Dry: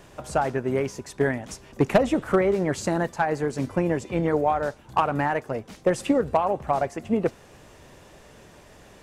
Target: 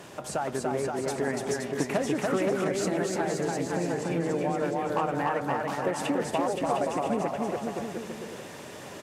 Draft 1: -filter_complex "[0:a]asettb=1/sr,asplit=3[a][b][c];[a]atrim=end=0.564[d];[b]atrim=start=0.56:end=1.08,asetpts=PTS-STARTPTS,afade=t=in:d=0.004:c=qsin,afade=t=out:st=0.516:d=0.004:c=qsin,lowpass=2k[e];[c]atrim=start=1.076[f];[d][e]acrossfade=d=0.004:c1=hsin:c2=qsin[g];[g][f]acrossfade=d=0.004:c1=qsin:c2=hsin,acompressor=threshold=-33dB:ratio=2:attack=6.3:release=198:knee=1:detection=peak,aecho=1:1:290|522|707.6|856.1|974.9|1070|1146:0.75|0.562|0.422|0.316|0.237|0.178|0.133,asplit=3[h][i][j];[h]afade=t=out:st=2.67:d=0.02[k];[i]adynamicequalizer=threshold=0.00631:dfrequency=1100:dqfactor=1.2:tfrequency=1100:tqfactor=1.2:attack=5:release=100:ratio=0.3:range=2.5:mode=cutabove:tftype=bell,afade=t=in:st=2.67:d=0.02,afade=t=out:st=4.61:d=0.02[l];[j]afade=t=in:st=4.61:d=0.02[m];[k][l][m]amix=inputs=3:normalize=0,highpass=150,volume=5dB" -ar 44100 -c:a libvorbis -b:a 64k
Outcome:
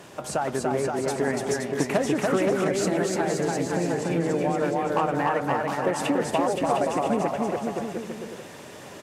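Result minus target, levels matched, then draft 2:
compressor: peak gain reduction -4 dB
-filter_complex "[0:a]asettb=1/sr,asplit=3[a][b][c];[a]atrim=end=0.564[d];[b]atrim=start=0.56:end=1.08,asetpts=PTS-STARTPTS,afade=t=in:d=0.004:c=qsin,afade=t=out:st=0.516:d=0.004:c=qsin,lowpass=2k[e];[c]atrim=start=1.076[f];[d][e]acrossfade=d=0.004:c1=hsin:c2=qsin[g];[g][f]acrossfade=d=0.004:c1=qsin:c2=hsin,acompressor=threshold=-40.5dB:ratio=2:attack=6.3:release=198:knee=1:detection=peak,aecho=1:1:290|522|707.6|856.1|974.9|1070|1146:0.75|0.562|0.422|0.316|0.237|0.178|0.133,asplit=3[h][i][j];[h]afade=t=out:st=2.67:d=0.02[k];[i]adynamicequalizer=threshold=0.00631:dfrequency=1100:dqfactor=1.2:tfrequency=1100:tqfactor=1.2:attack=5:release=100:ratio=0.3:range=2.5:mode=cutabove:tftype=bell,afade=t=in:st=2.67:d=0.02,afade=t=out:st=4.61:d=0.02[l];[j]afade=t=in:st=4.61:d=0.02[m];[k][l][m]amix=inputs=3:normalize=0,highpass=150,volume=5dB" -ar 44100 -c:a libvorbis -b:a 64k

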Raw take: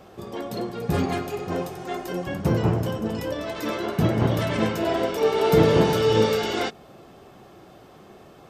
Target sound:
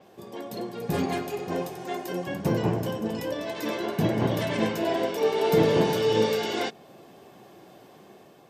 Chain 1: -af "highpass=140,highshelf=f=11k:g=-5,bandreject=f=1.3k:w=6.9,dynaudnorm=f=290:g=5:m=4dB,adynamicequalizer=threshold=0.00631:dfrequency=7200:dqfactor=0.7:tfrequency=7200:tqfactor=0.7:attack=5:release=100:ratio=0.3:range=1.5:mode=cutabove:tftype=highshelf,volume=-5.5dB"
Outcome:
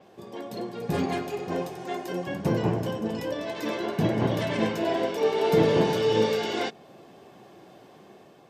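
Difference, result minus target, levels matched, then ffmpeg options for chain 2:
8000 Hz band -2.5 dB
-af "highpass=140,highshelf=f=11k:g=6.5,bandreject=f=1.3k:w=6.9,dynaudnorm=f=290:g=5:m=4dB,adynamicequalizer=threshold=0.00631:dfrequency=7200:dqfactor=0.7:tfrequency=7200:tqfactor=0.7:attack=5:release=100:ratio=0.3:range=1.5:mode=cutabove:tftype=highshelf,volume=-5.5dB"

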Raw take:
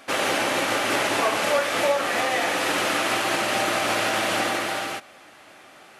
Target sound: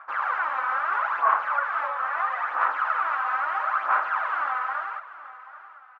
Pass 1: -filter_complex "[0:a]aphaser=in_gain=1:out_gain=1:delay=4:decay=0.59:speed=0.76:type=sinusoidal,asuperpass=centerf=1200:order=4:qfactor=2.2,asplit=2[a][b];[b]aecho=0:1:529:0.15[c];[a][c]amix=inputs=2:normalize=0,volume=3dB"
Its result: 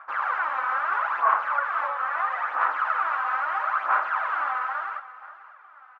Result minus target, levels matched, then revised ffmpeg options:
echo 0.252 s early
-filter_complex "[0:a]aphaser=in_gain=1:out_gain=1:delay=4:decay=0.59:speed=0.76:type=sinusoidal,asuperpass=centerf=1200:order=4:qfactor=2.2,asplit=2[a][b];[b]aecho=0:1:781:0.15[c];[a][c]amix=inputs=2:normalize=0,volume=3dB"

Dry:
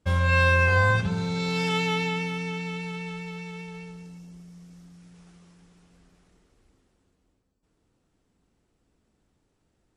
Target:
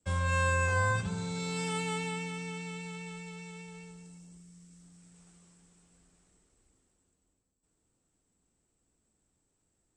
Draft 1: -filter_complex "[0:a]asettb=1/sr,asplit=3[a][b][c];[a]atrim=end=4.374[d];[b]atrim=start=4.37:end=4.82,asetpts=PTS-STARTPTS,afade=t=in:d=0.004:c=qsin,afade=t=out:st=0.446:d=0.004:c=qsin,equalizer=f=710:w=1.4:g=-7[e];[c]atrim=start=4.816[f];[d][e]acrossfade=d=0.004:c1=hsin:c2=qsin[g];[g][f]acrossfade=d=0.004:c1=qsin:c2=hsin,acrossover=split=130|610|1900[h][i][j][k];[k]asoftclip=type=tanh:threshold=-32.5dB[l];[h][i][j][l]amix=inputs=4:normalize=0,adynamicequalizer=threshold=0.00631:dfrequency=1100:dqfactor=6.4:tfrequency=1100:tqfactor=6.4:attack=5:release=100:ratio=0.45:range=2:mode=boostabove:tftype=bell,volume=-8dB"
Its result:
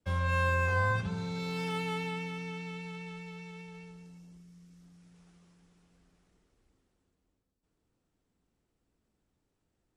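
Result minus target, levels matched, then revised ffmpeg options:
8000 Hz band -12.0 dB
-filter_complex "[0:a]asettb=1/sr,asplit=3[a][b][c];[a]atrim=end=4.374[d];[b]atrim=start=4.37:end=4.82,asetpts=PTS-STARTPTS,afade=t=in:d=0.004:c=qsin,afade=t=out:st=0.446:d=0.004:c=qsin,equalizer=f=710:w=1.4:g=-7[e];[c]atrim=start=4.816[f];[d][e]acrossfade=d=0.004:c1=hsin:c2=qsin[g];[g][f]acrossfade=d=0.004:c1=qsin:c2=hsin,acrossover=split=130|610|1900[h][i][j][k];[k]asoftclip=type=tanh:threshold=-32.5dB[l];[h][i][j][l]amix=inputs=4:normalize=0,adynamicequalizer=threshold=0.00631:dfrequency=1100:dqfactor=6.4:tfrequency=1100:tqfactor=6.4:attack=5:release=100:ratio=0.45:range=2:mode=boostabove:tftype=bell,lowpass=f=8k:t=q:w=9.5,volume=-8dB"

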